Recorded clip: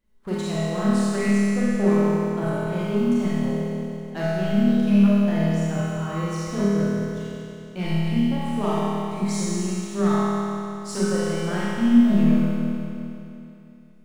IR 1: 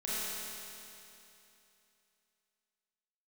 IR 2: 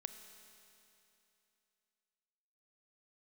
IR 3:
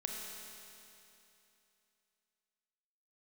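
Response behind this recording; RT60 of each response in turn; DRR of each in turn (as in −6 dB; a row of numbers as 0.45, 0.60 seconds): 1; 2.9, 2.9, 2.9 seconds; −10.0, 8.0, −0.5 decibels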